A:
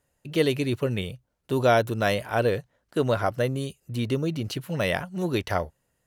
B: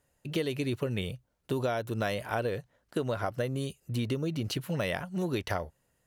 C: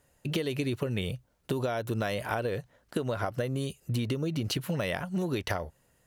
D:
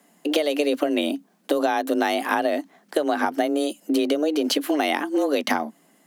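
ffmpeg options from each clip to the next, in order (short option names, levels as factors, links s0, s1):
-af "acompressor=threshold=0.0447:ratio=10"
-af "acompressor=threshold=0.0224:ratio=6,volume=2"
-af "afreqshift=150,volume=2.66"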